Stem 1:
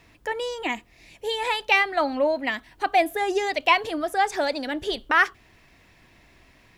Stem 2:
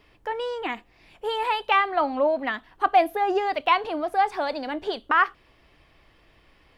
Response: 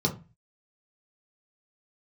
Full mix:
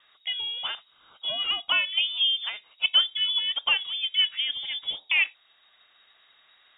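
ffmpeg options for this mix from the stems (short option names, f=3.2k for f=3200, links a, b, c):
-filter_complex "[0:a]highpass=580,volume=-6.5dB[a];[1:a]adynamicequalizer=threshold=0.0178:dfrequency=1700:dqfactor=0.7:tfrequency=1700:tqfactor=0.7:attack=5:release=100:ratio=0.375:range=3:mode=cutabove:tftype=highshelf,volume=-3.5dB,asplit=2[b][c];[c]apad=whole_len=298677[d];[a][d]sidechaincompress=threshold=-29dB:ratio=8:attack=16:release=891[e];[e][b]amix=inputs=2:normalize=0,lowpass=f=3.2k:t=q:w=0.5098,lowpass=f=3.2k:t=q:w=0.6013,lowpass=f=3.2k:t=q:w=0.9,lowpass=f=3.2k:t=q:w=2.563,afreqshift=-3800"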